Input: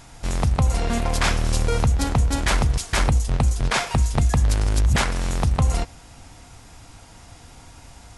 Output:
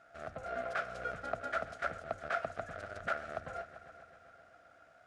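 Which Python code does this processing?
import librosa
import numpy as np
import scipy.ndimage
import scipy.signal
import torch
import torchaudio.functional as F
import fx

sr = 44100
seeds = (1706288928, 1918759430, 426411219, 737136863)

y = fx.stretch_grains(x, sr, factor=0.62, grain_ms=31.0)
y = fx.double_bandpass(y, sr, hz=950.0, octaves=1.1)
y = fx.echo_heads(y, sr, ms=131, heads='all three', feedback_pct=58, wet_db=-19)
y = y * 10.0 ** (-1.5 / 20.0)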